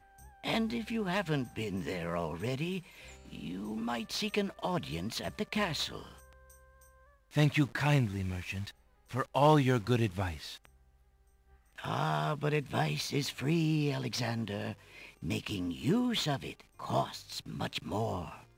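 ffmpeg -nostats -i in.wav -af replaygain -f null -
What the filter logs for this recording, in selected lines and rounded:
track_gain = +13.4 dB
track_peak = 0.162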